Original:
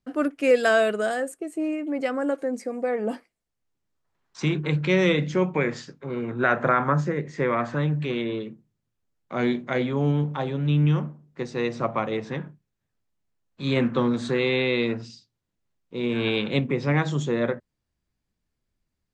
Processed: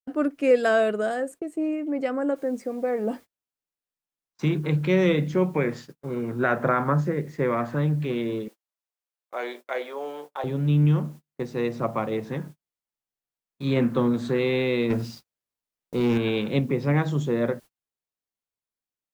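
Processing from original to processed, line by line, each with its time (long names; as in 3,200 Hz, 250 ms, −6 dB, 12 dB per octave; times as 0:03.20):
0:02.36: noise floor change −69 dB −56 dB
0:08.48–0:10.44: high-pass filter 490 Hz 24 dB per octave
0:14.90–0:16.18: leveller curve on the samples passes 2
whole clip: noise gate −40 dBFS, range −35 dB; tilt shelving filter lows +3.5 dB, about 1,200 Hz; level −2.5 dB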